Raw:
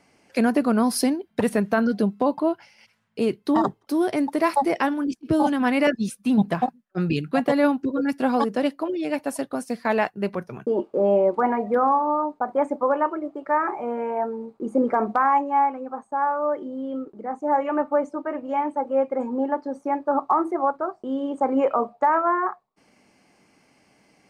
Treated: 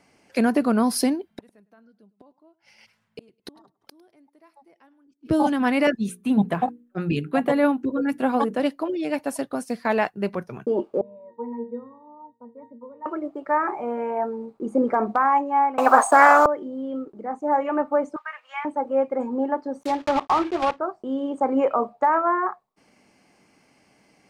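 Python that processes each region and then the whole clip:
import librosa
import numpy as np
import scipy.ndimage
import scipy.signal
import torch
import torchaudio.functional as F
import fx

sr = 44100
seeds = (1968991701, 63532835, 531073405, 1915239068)

y = fx.chain(x, sr, fx.gate_flip(shuts_db=-26.0, range_db=-34),
    fx.echo_feedback(ms=104, feedback_pct=24, wet_db=-22), at=(1.33, 5.31))
y = fx.chain(y, sr, fx.peak_eq(hz=5100.0, db=-11.5, octaves=0.52),
    fx.hum_notches(base_hz=60, count=8), at=(5.95, 8.6))
y = fx.chain(y, sr, fx.peak_eq(hz=1200.0, db=-3.5, octaves=0.4),
    fx.octave_resonator(note='A#', decay_s=0.29), at=(11.01, 13.06))
y = fx.chain(y, sr, fx.highpass_res(hz=760.0, q=7.9),
    fx.high_shelf(hz=4900.0, db=12.0),
    fx.spectral_comp(ratio=4.0), at=(15.78, 16.46))
y = fx.chain(y, sr, fx.highpass(hz=1200.0, slope=24),
    fx.peak_eq(hz=2400.0, db=7.5, octaves=2.1), at=(18.16, 18.65))
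y = fx.chain(y, sr, fx.block_float(bits=3),
    fx.env_lowpass_down(base_hz=2800.0, full_db=-19.5), at=(19.81, 20.8))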